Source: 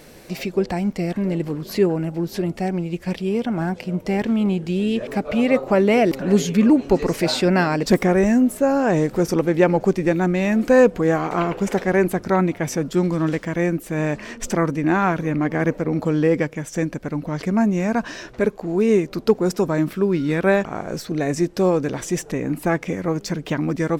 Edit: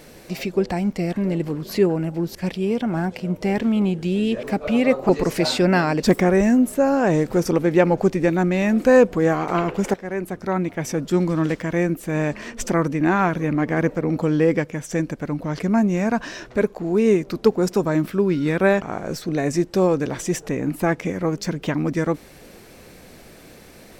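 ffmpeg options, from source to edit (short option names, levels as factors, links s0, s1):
-filter_complex "[0:a]asplit=4[s0][s1][s2][s3];[s0]atrim=end=2.352[s4];[s1]atrim=start=2.988:end=5.732[s5];[s2]atrim=start=6.918:end=11.77,asetpts=PTS-STARTPTS,afade=t=out:st=4.848:d=0.004:c=hsin:silence=0.199526[s6];[s3]atrim=start=11.77,asetpts=PTS-STARTPTS,afade=t=in:d=1.21:silence=0.199526[s7];[s4][s5]acrossfade=d=0.004:c1=hsin:c2=hsin[s8];[s6][s7]concat=n=2:v=0:a=1[s9];[s8][s9]acrossfade=d=0.004:c1=hsin:c2=hsin"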